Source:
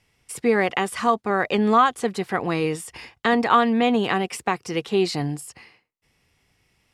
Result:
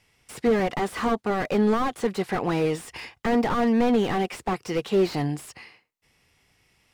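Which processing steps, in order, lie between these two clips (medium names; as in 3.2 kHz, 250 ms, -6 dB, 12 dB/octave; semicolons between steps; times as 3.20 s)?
bass shelf 420 Hz -3.5 dB; slew-rate limiter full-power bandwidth 47 Hz; trim +2.5 dB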